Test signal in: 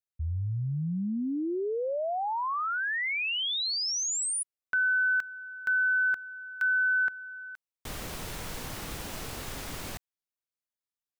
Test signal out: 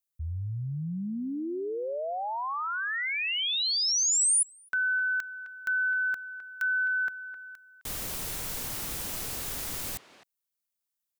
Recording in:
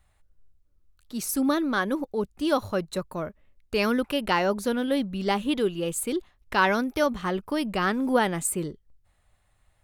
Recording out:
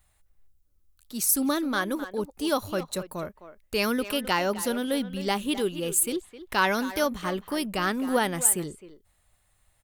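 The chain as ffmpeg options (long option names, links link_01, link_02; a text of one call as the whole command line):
ffmpeg -i in.wav -filter_complex "[0:a]asplit=2[link_01][link_02];[link_02]adelay=260,highpass=300,lowpass=3400,asoftclip=type=hard:threshold=-18dB,volume=-12dB[link_03];[link_01][link_03]amix=inputs=2:normalize=0,crystalizer=i=2:c=0,volume=-2.5dB" out.wav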